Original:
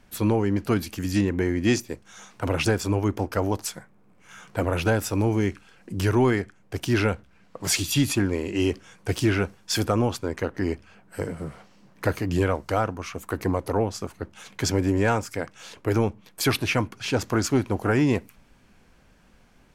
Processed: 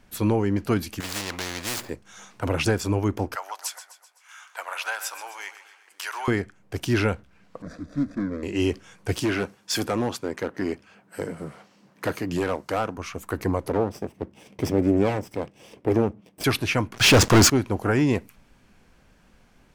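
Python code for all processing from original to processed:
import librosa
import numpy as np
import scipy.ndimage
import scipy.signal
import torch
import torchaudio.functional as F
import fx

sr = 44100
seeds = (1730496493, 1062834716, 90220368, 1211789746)

y = fx.chain(x, sr, fx.median_filter(points=15),
    fx.spectral_comp(ratio=4.0), at=(1.0, 1.9))
y = fx.chain(y, sr, fx.highpass(hz=870.0, slope=24),
    fx.echo_feedback(ms=128, feedback_pct=52, wet_db=-13), at=(3.35, 6.28))
y = fx.chain(y, sr, fx.median_filter(points=41),
    fx.lowpass(hz=4500.0, slope=12),
    fx.fixed_phaser(hz=570.0, stages=8), at=(7.62, 8.43))
y = fx.chain(y, sr, fx.highpass(hz=150.0, slope=12),
    fx.clip_hard(threshold_db=-19.0), at=(9.2, 12.98))
y = fx.chain(y, sr, fx.lower_of_two(delay_ms=0.37),
    fx.highpass(hz=280.0, slope=6),
    fx.tilt_shelf(db=8.5, hz=900.0), at=(13.69, 16.44))
y = fx.chain(y, sr, fx.lowpass(hz=9500.0, slope=12),
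    fx.leveller(passes=5), at=(16.94, 17.5))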